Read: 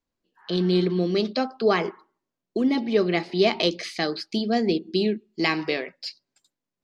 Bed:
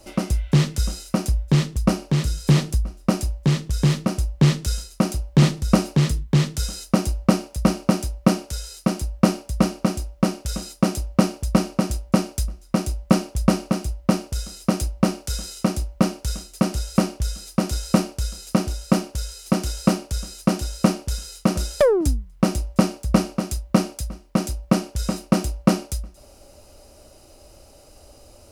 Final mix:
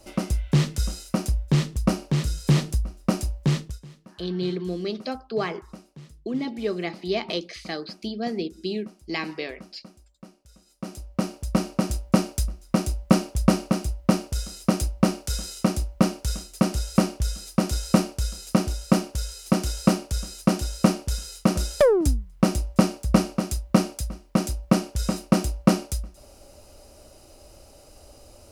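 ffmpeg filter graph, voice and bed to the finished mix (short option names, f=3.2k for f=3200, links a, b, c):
-filter_complex "[0:a]adelay=3700,volume=-6dB[a];[1:a]volume=22.5dB,afade=t=out:st=3.58:d=0.22:silence=0.0668344,afade=t=in:st=10.65:d=1.4:silence=0.0530884[b];[a][b]amix=inputs=2:normalize=0"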